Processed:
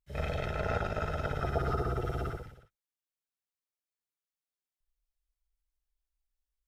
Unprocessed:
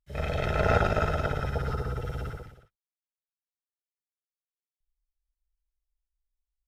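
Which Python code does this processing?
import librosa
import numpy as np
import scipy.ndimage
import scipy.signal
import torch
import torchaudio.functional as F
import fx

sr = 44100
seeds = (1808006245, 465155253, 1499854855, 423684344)

y = fx.rider(x, sr, range_db=4, speed_s=0.5)
y = fx.small_body(y, sr, hz=(350.0, 690.0, 1200.0), ring_ms=45, db=12, at=(1.41, 2.37))
y = y * 10.0 ** (-5.5 / 20.0)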